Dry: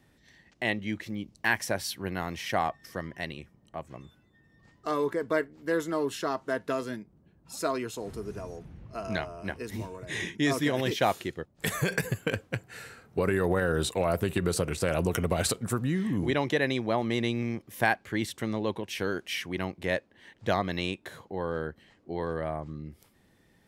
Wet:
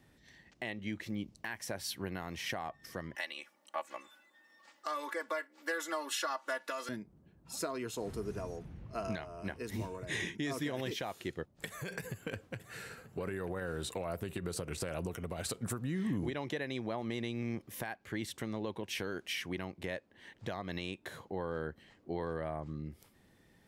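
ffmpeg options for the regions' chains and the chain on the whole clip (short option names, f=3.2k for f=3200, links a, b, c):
-filter_complex "[0:a]asettb=1/sr,asplit=3[a][b][c];[a]atrim=end=3.154[d];[b]atrim=start=3.15:end=6.89,asetpts=PTS-STARTPTS,afade=t=in:d=0.004:c=qsin,afade=t=out:st=3.736:d=0.004:c=qsin,highpass=830,aecho=1:1:3.5:0.9,atrim=end_sample=164934,acontrast=49[e];[c]atrim=start=6.886[f];[d][e]acrossfade=d=0.004:c1=hsin:c2=qsin[g];[g][f]acrossfade=d=0.004:c1=qsin:c2=hsin,asettb=1/sr,asplit=3[h][i][j];[h]atrim=end=11.664[k];[i]atrim=start=11.66:end=13.92,asetpts=PTS-STARTPTS,afade=t=in:d=0.004:c=qsin,afade=t=out:st=2.256:d=0.004:c=qsin,acompressor=threshold=-40dB:ratio=2:attack=3.2:release=140:knee=1:detection=peak,aecho=1:1:936:0.141,atrim=end_sample=99666[l];[j]atrim=start=13.916[m];[k][l]acrossfade=d=0.004:c1=hsin:c2=qsin[n];[n][m]acrossfade=d=0.004:c1=qsin:c2=hsin,acompressor=threshold=-29dB:ratio=4,alimiter=limit=-24dB:level=0:latency=1:release=358,volume=-1.5dB"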